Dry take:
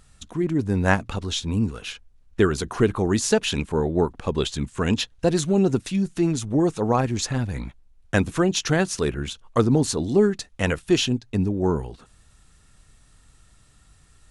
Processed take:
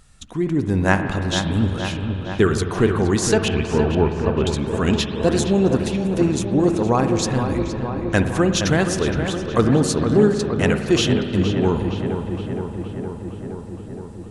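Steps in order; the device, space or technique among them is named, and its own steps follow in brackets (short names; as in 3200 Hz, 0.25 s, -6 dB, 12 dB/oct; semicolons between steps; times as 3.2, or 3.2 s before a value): 3.48–4.47 steep low-pass 2700 Hz 48 dB/oct; dub delay into a spring reverb (darkening echo 0.467 s, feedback 76%, low-pass 2800 Hz, level -7.5 dB; spring tank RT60 2.8 s, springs 52 ms, chirp 75 ms, DRR 7.5 dB); gain +2 dB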